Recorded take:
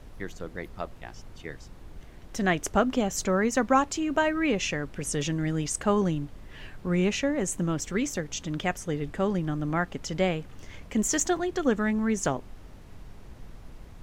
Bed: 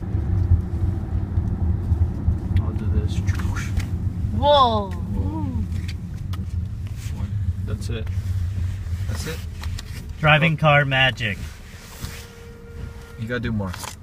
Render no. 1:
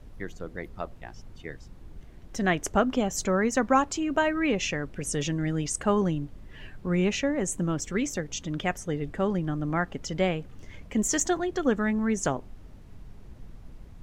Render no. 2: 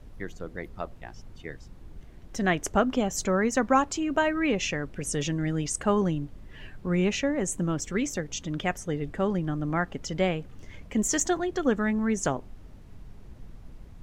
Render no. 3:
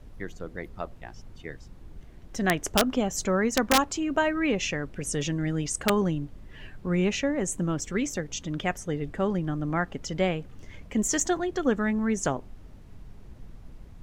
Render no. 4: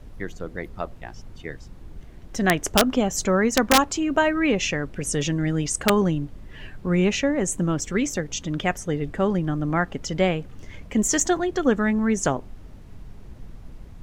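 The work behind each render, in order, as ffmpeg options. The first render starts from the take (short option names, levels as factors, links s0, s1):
-af "afftdn=nr=6:nf=-47"
-af anull
-af "aeval=exprs='(mod(3.76*val(0)+1,2)-1)/3.76':c=same"
-af "volume=1.68"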